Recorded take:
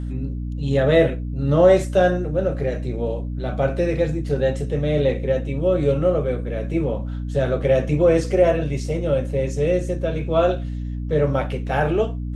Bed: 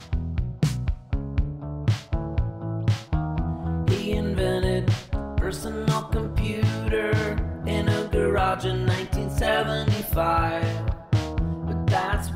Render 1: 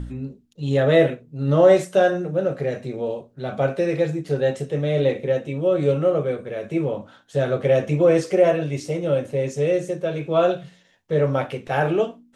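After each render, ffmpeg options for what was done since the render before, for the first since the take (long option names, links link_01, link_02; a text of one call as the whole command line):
ffmpeg -i in.wav -af "bandreject=frequency=60:width_type=h:width=4,bandreject=frequency=120:width_type=h:width=4,bandreject=frequency=180:width_type=h:width=4,bandreject=frequency=240:width_type=h:width=4,bandreject=frequency=300:width_type=h:width=4" out.wav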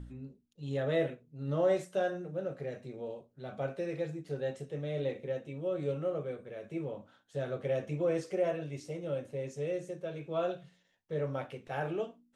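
ffmpeg -i in.wav -af "volume=-14.5dB" out.wav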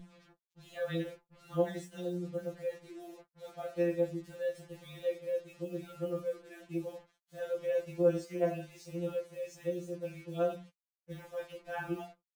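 ffmpeg -i in.wav -af "acrusher=bits=8:mix=0:aa=0.5,afftfilt=real='re*2.83*eq(mod(b,8),0)':imag='im*2.83*eq(mod(b,8),0)':win_size=2048:overlap=0.75" out.wav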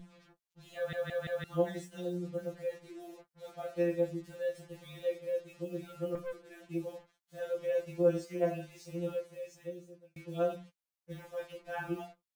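ffmpeg -i in.wav -filter_complex "[0:a]asettb=1/sr,asplit=3[link_01][link_02][link_03];[link_01]atrim=end=6.154[link_04];[link_02]atrim=start=6.15:end=6.64,asetpts=PTS-STARTPTS,afade=type=in:duration=0.004:curve=qsin,afade=type=out:start_time=0.486:duration=0.004:curve=qsin,aeval=exprs='(tanh(56.2*val(0)+0.4)-tanh(0.4))/56.2':channel_layout=same[link_05];[link_03]atrim=start=6.636[link_06];[link_04][link_05]acrossfade=duration=0.004:curve1=hsin:curve2=qsin[link_07];[link_07][link_06]acrossfade=duration=0.004:curve1=qsin:curve2=hsin,asplit=6[link_08][link_09][link_10][link_11][link_12][link_13];[link_08]atrim=end=0.932[link_14];[link_09]atrim=start=0.758:end=0.932[link_15];[link_10]atrim=start=0.758:end=0.932[link_16];[link_11]atrim=start=0.758:end=0.932[link_17];[link_12]atrim=start=1.438:end=10.16,asetpts=PTS-STARTPTS,afade=type=out:start_time=7.672:duration=1.05[link_18];[link_13]atrim=start=10.16,asetpts=PTS-STARTPTS,afade=type=in:duration=0.004:curve=hsin[link_19];[link_14][link_15]acrossfade=duration=0.004:curve1=hsin:curve2=hsin[link_20];[link_20][link_16]acrossfade=duration=0.004:curve1=hsin:curve2=hsin[link_21];[link_21][link_17]acrossfade=duration=0.004:curve1=hsin:curve2=hsin[link_22];[link_18][link_19]concat=n=2:v=0:a=1[link_23];[link_22][link_23]acrossfade=duration=0.004:curve1=hsin:curve2=hsin" out.wav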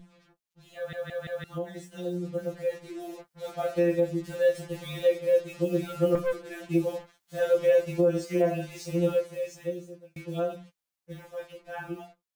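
ffmpeg -i in.wav -af "alimiter=level_in=2.5dB:limit=-24dB:level=0:latency=1:release=314,volume=-2.5dB,dynaudnorm=framelen=340:gausssize=17:maxgain=12.5dB" out.wav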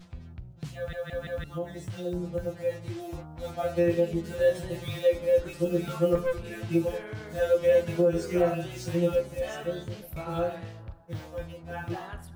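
ffmpeg -i in.wav -i bed.wav -filter_complex "[1:a]volume=-16dB[link_01];[0:a][link_01]amix=inputs=2:normalize=0" out.wav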